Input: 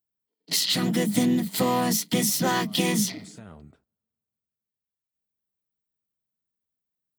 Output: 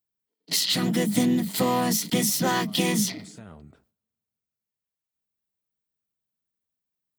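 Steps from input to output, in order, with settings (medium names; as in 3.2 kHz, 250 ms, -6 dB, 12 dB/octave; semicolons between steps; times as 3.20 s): decay stretcher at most 140 dB/s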